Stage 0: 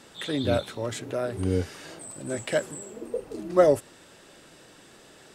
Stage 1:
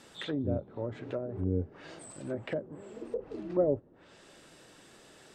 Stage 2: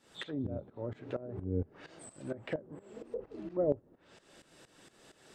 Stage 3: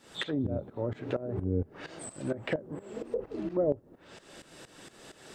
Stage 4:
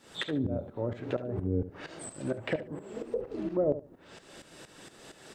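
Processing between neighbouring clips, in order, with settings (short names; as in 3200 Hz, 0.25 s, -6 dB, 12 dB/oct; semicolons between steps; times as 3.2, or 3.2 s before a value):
treble ducked by the level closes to 440 Hz, closed at -24.5 dBFS; gain -4 dB
tremolo saw up 4.3 Hz, depth 85%
compressor 2:1, threshold -37 dBFS, peak gain reduction 7.5 dB; gain +8.5 dB
feedback echo 72 ms, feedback 18%, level -13 dB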